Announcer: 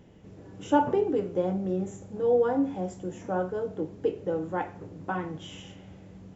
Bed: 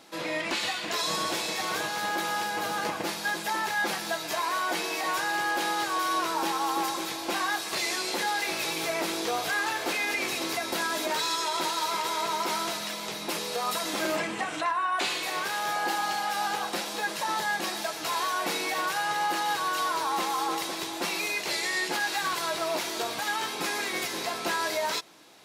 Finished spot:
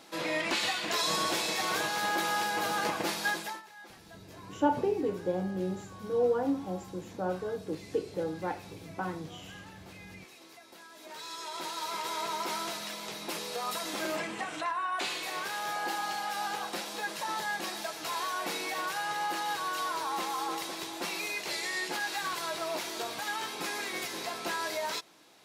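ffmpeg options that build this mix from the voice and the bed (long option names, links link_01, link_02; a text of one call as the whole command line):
ffmpeg -i stem1.wav -i stem2.wav -filter_complex "[0:a]adelay=3900,volume=-4dB[link_01];[1:a]volume=17dB,afade=type=out:start_time=3.28:duration=0.34:silence=0.0794328,afade=type=in:start_time=10.95:duration=1.2:silence=0.133352[link_02];[link_01][link_02]amix=inputs=2:normalize=0" out.wav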